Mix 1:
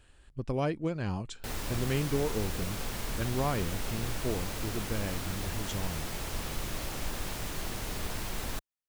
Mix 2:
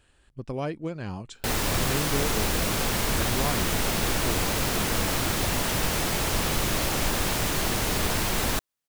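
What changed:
background +12.0 dB; master: add bass shelf 63 Hz -7.5 dB

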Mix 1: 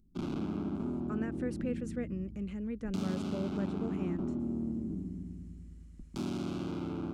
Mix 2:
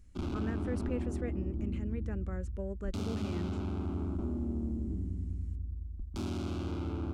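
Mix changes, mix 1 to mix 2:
speech: entry -0.75 s; master: add resonant low shelf 110 Hz +8 dB, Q 3

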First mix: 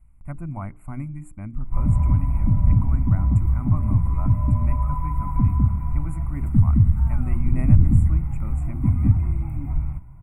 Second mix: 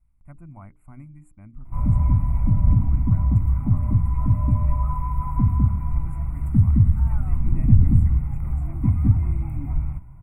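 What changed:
speech -10.5 dB; reverb: off

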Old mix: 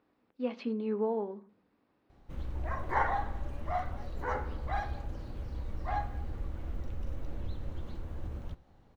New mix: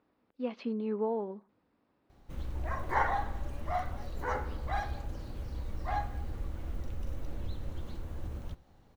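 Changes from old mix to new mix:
speech: send -11.5 dB; background: add treble shelf 5.3 kHz +9.5 dB

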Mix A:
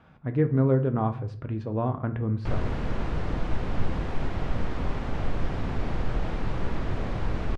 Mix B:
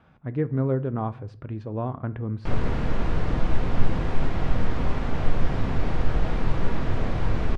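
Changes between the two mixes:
speech: send -7.5 dB; background: send +10.5 dB

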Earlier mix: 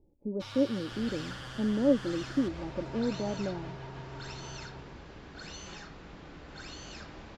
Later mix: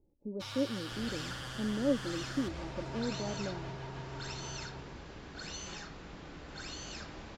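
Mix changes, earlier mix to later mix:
speech -5.5 dB; master: add treble shelf 7.4 kHz +9.5 dB

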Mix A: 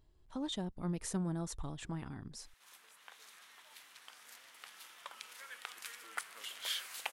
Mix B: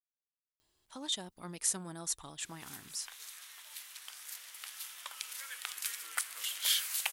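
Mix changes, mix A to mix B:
speech: entry +0.60 s; master: add tilt EQ +4 dB/octave

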